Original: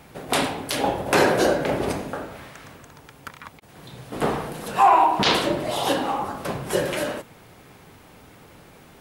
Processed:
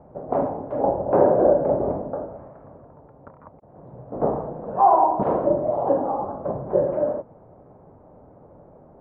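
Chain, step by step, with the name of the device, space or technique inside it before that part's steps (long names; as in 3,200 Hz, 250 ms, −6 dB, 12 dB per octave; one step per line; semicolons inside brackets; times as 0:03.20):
under water (low-pass filter 960 Hz 24 dB per octave; parametric band 590 Hz +8 dB 0.5 octaves)
level −1 dB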